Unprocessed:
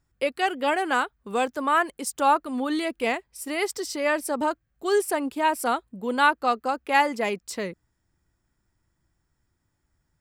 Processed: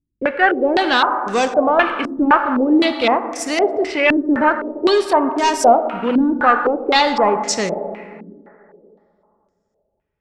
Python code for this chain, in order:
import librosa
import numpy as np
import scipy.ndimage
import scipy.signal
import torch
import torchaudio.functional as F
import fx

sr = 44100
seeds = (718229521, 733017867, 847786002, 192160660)

y = fx.leveller(x, sr, passes=3)
y = fx.rev_plate(y, sr, seeds[0], rt60_s=2.7, hf_ratio=0.45, predelay_ms=0, drr_db=7.5)
y = fx.filter_held_lowpass(y, sr, hz=3.9, low_hz=280.0, high_hz=6200.0)
y = F.gain(torch.from_numpy(y), -2.5).numpy()